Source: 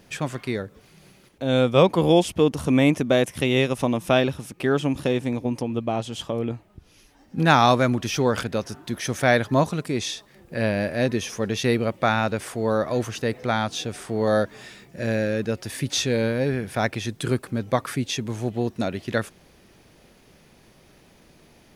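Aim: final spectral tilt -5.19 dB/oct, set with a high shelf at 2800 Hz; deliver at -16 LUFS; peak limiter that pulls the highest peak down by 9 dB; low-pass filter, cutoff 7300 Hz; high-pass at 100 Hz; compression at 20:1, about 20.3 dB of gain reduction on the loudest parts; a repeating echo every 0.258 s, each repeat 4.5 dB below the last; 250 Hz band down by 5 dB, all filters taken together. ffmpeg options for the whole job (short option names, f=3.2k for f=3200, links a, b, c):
-af "highpass=100,lowpass=7.3k,equalizer=f=250:t=o:g=-6,highshelf=f=2.8k:g=-8.5,acompressor=threshold=-33dB:ratio=20,alimiter=level_in=4dB:limit=-24dB:level=0:latency=1,volume=-4dB,aecho=1:1:258|516|774|1032|1290|1548|1806|2064|2322:0.596|0.357|0.214|0.129|0.0772|0.0463|0.0278|0.0167|0.01,volume=23dB"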